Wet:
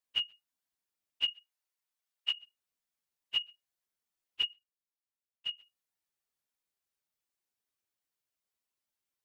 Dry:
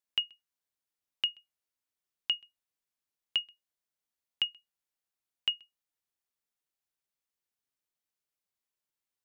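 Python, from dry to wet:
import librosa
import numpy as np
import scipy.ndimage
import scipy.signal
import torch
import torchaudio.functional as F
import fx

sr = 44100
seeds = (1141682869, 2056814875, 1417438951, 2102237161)

y = fx.phase_scramble(x, sr, seeds[0], window_ms=50)
y = fx.highpass(y, sr, hz=560.0, slope=12, at=(1.32, 2.32), fade=0.02)
y = fx.level_steps(y, sr, step_db=17, at=(4.53, 5.57))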